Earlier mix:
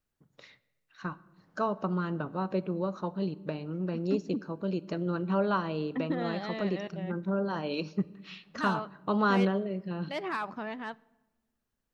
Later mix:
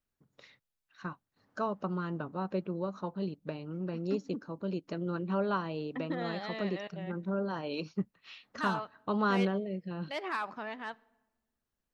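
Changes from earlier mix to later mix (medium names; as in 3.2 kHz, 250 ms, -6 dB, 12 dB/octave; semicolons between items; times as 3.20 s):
first voice: send off; second voice: add bass shelf 340 Hz -9.5 dB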